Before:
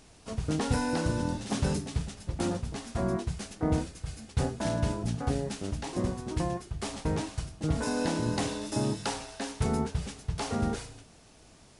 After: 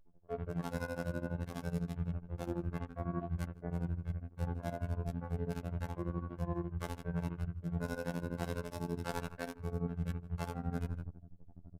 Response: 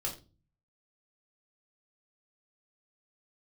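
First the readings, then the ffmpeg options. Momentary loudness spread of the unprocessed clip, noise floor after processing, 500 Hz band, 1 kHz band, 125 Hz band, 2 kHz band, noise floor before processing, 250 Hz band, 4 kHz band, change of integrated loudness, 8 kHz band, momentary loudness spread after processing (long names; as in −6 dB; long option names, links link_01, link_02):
7 LU, −58 dBFS, −8.0 dB, −9.5 dB, −5.5 dB, −7.5 dB, −56 dBFS, −8.5 dB, −16.5 dB, −7.5 dB, −18.0 dB, 3 LU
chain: -filter_complex "[1:a]atrim=start_sample=2205,asetrate=52920,aresample=44100[link_01];[0:a][link_01]afir=irnorm=-1:irlink=0,asubboost=boost=2:cutoff=210,tremolo=f=12:d=0.96,acrossover=split=2300[link_02][link_03];[link_02]acontrast=33[link_04];[link_03]acrusher=bits=4:dc=4:mix=0:aa=0.000001[link_05];[link_04][link_05]amix=inputs=2:normalize=0,lowshelf=frequency=150:gain=-11.5,anlmdn=0.0398,aresample=32000,aresample=44100,afftfilt=real='hypot(re,im)*cos(PI*b)':imag='0':win_size=2048:overlap=0.75,asplit=2[link_06][link_07];[link_07]adelay=163.3,volume=-22dB,highshelf=frequency=4000:gain=-3.67[link_08];[link_06][link_08]amix=inputs=2:normalize=0,areverse,acompressor=threshold=-41dB:ratio=6,areverse,volume=7dB"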